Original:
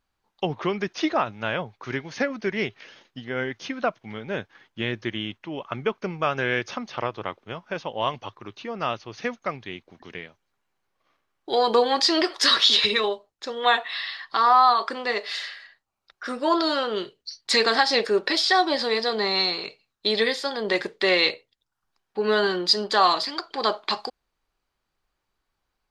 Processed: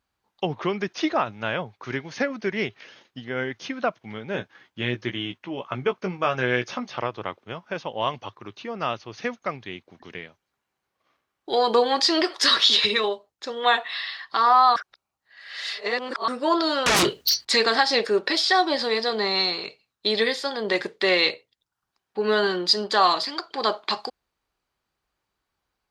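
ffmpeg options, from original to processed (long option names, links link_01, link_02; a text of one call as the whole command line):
ffmpeg -i in.wav -filter_complex "[0:a]asettb=1/sr,asplit=3[link_01][link_02][link_03];[link_01]atrim=end=4.334[link_04];[link_02]atrim=start=4.33:end=6.99,asetpts=PTS-STARTPTS,afade=type=in:duration=0.004:curve=qsin,afade=type=out:start_time=2.656:duration=0.004:curve=qsin,asplit=2[link_05][link_06];[link_06]adelay=16,volume=-7dB[link_07];[link_05][link_07]amix=inputs=2:normalize=0,atrim=end_sample=117306[link_08];[link_03]atrim=start=6.986[link_09];[link_04][link_08]acrossfade=duration=0.004:curve1=hsin:curve2=qsin[link_10];[link_10][link_09]acrossfade=duration=0.004:curve1=qsin:curve2=hsin,asettb=1/sr,asplit=3[link_11][link_12][link_13];[link_11]atrim=end=16.864[link_14];[link_12]atrim=start=16.86:end=17.45,asetpts=PTS-STARTPTS,afade=type=in:duration=0.004:curve=qsin,afade=type=out:start_time=0.586:duration=0.004:curve=qsin,aeval=exprs='0.168*sin(PI/2*7.94*val(0)/0.168)':channel_layout=same[link_15];[link_13]atrim=start=17.446[link_16];[link_14][link_15]acrossfade=duration=0.004:curve1=hsin:curve2=qsin[link_17];[link_17][link_16]acrossfade=duration=0.004:curve1=qsin:curve2=hsin,asplit=3[link_18][link_19][link_20];[link_18]atrim=end=14.762[link_21];[link_19]atrim=start=14.758:end=16.282,asetpts=PTS-STARTPTS,areverse[link_22];[link_20]atrim=start=16.278[link_23];[link_21][link_22]acrossfade=duration=0.004:curve1=hsin:curve2=hsin[link_24];[link_24][link_23]acrossfade=duration=0.004:curve1=hsin:curve2=hsin,highpass=48" out.wav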